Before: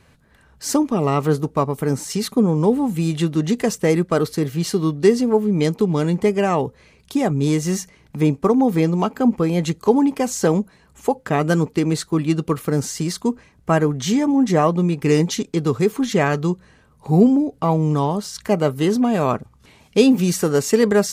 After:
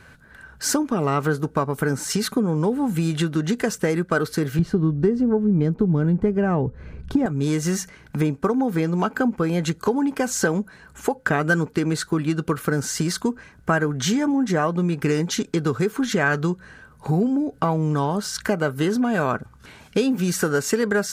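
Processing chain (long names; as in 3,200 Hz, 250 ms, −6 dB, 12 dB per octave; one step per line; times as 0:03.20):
0:04.59–0:07.26: spectral tilt −4.5 dB per octave
downward compressor 4 to 1, threshold −23 dBFS, peak gain reduction 17.5 dB
parametric band 1,500 Hz +14 dB 0.3 octaves
level +3.5 dB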